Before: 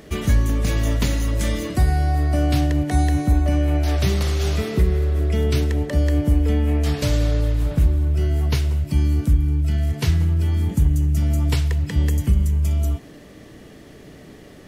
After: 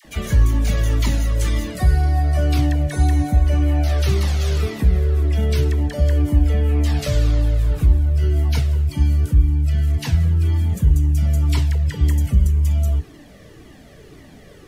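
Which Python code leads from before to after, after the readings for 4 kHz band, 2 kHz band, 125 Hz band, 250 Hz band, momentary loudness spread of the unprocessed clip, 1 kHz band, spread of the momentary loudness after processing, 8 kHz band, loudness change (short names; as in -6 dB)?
-0.5 dB, -0.5 dB, +2.0 dB, -2.0 dB, 3 LU, -1.0 dB, 3 LU, -0.5 dB, +1.5 dB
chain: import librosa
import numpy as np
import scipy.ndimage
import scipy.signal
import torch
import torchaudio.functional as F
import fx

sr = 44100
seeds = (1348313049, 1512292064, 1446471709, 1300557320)

y = fx.dispersion(x, sr, late='lows', ms=50.0, hz=940.0)
y = fx.comb_cascade(y, sr, direction='falling', hz=1.9)
y = y * 10.0 ** (4.0 / 20.0)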